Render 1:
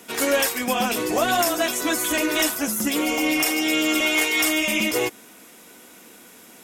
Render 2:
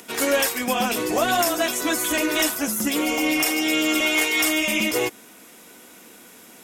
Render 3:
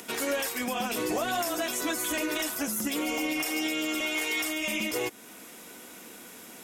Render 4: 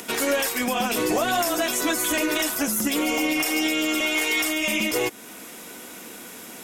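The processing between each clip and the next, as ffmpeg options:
-af "acompressor=mode=upward:threshold=-44dB:ratio=2.5"
-af "alimiter=limit=-20.5dB:level=0:latency=1:release=299"
-af "aeval=exprs='0.1*(cos(1*acos(clip(val(0)/0.1,-1,1)))-cos(1*PI/2))+0.000891*(cos(6*acos(clip(val(0)/0.1,-1,1)))-cos(6*PI/2))':c=same,volume=6.5dB"

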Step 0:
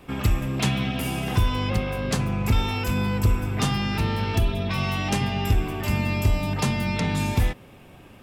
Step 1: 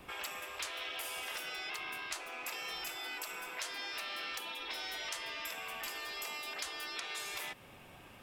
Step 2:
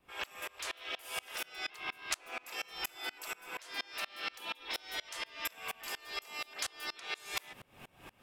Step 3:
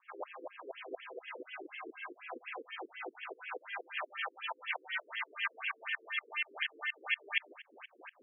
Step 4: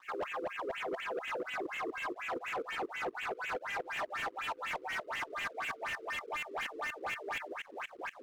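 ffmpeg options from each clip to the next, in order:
-filter_complex "[0:a]afftfilt=real='re*lt(hypot(re,im),0.1)':imag='im*lt(hypot(re,im),0.1)':win_size=1024:overlap=0.75,acrossover=split=640|1500[a][b][c];[a]acompressor=threshold=-56dB:ratio=4[d];[b]acompressor=threshold=-47dB:ratio=4[e];[c]acompressor=threshold=-37dB:ratio=4[f];[d][e][f]amix=inputs=3:normalize=0,volume=-2.5dB"
-af "aeval=exprs='val(0)*pow(10,-29*if(lt(mod(-4.2*n/s,1),2*abs(-4.2)/1000),1-mod(-4.2*n/s,1)/(2*abs(-4.2)/1000),(mod(-4.2*n/s,1)-2*abs(-4.2)/1000)/(1-2*abs(-4.2)/1000))/20)':c=same,volume=8dB"
-af "afftfilt=real='re*between(b*sr/1024,340*pow(2400/340,0.5+0.5*sin(2*PI*4.1*pts/sr))/1.41,340*pow(2400/340,0.5+0.5*sin(2*PI*4.1*pts/sr))*1.41)':imag='im*between(b*sr/1024,340*pow(2400/340,0.5+0.5*sin(2*PI*4.1*pts/sr))/1.41,340*pow(2400/340,0.5+0.5*sin(2*PI*4.1*pts/sr))*1.41)':win_size=1024:overlap=0.75,volume=8.5dB"
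-filter_complex "[0:a]asplit=2[a][b];[b]highpass=f=720:p=1,volume=34dB,asoftclip=type=tanh:threshold=-18.5dB[c];[a][c]amix=inputs=2:normalize=0,lowpass=f=1.6k:p=1,volume=-6dB,aeval=exprs='sgn(val(0))*max(abs(val(0))-0.00158,0)':c=same,volume=-8dB"

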